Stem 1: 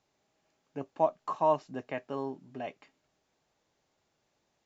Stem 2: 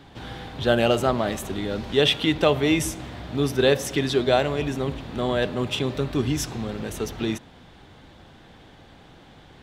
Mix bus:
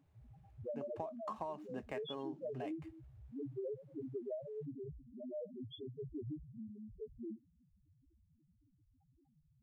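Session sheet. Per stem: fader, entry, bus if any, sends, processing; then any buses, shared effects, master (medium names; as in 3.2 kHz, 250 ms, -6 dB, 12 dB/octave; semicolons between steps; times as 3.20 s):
-3.5 dB, 0.00 s, no send, median filter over 9 samples; compression, threshold -27 dBFS, peak gain reduction 7 dB
-10.5 dB, 0.00 s, no send, loudest bins only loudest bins 1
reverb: none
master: compression 6:1, threshold -39 dBFS, peak gain reduction 10 dB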